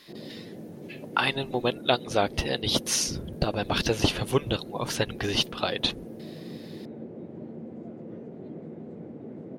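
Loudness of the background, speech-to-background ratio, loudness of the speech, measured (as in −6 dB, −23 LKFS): −41.5 LKFS, 14.5 dB, −27.0 LKFS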